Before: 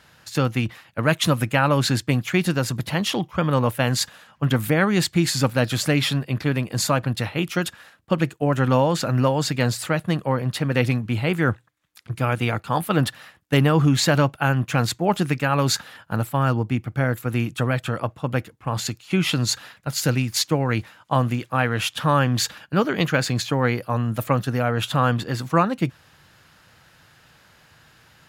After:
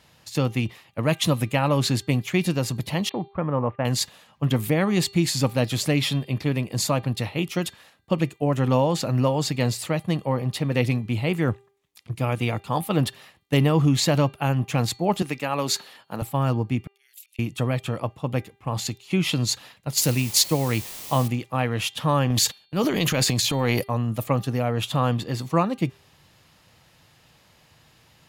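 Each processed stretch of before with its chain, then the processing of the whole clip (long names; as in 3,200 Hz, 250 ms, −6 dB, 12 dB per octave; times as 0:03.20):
0:03.09–0:03.85: inverse Chebyshev low-pass filter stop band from 7,800 Hz, stop band 70 dB + noise gate −38 dBFS, range −20 dB + low-shelf EQ 360 Hz −4 dB
0:15.22–0:16.22: high-pass filter 160 Hz + low-shelf EQ 250 Hz −7 dB
0:16.87–0:17.39: volume swells 252 ms + Butterworth high-pass 2,600 Hz
0:19.97–0:21.28: high-shelf EQ 4,300 Hz +9 dB + bit-depth reduction 6 bits, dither triangular
0:22.30–0:23.89: noise gate −36 dBFS, range −27 dB + high-shelf EQ 3,700 Hz +9 dB + transient designer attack −5 dB, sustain +9 dB
whole clip: parametric band 1,500 Hz −11 dB 0.44 octaves; hum removal 397.7 Hz, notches 11; level −1.5 dB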